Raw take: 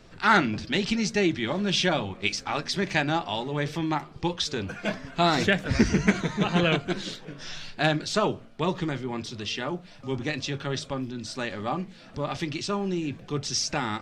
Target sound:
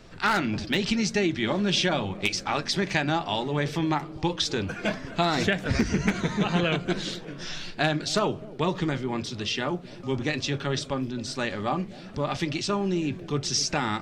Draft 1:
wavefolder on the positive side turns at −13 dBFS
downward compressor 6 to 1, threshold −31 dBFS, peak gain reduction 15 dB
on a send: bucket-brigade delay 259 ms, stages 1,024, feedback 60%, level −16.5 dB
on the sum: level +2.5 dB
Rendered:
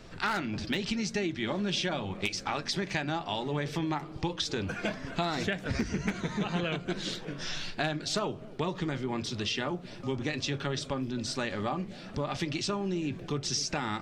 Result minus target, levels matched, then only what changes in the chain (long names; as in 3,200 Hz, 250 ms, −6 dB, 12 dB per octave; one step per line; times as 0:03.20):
downward compressor: peak gain reduction +7 dB
change: downward compressor 6 to 1, threshold −22.5 dBFS, peak gain reduction 8 dB